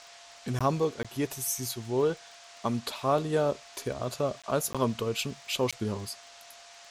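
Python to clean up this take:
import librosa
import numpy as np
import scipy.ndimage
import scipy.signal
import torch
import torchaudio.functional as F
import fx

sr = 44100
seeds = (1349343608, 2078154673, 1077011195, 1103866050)

y = fx.fix_declick_ar(x, sr, threshold=6.5)
y = fx.notch(y, sr, hz=690.0, q=30.0)
y = fx.fix_interpolate(y, sr, at_s=(0.59, 1.03, 4.42, 4.73, 5.71), length_ms=16.0)
y = fx.noise_reduce(y, sr, print_start_s=6.21, print_end_s=6.71, reduce_db=23.0)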